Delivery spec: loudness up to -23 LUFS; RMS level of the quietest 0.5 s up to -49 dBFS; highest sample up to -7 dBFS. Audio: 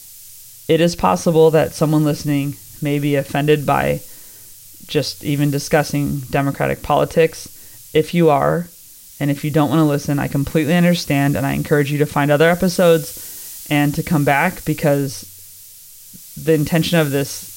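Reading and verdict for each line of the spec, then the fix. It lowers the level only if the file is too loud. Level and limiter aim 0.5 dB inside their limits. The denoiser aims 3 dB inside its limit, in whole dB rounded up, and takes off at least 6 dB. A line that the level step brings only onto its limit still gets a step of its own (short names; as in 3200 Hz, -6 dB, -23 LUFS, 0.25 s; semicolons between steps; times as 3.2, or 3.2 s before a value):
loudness -17.0 LUFS: fail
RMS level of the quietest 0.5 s -42 dBFS: fail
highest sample -3.0 dBFS: fail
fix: denoiser 6 dB, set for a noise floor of -42 dBFS; gain -6.5 dB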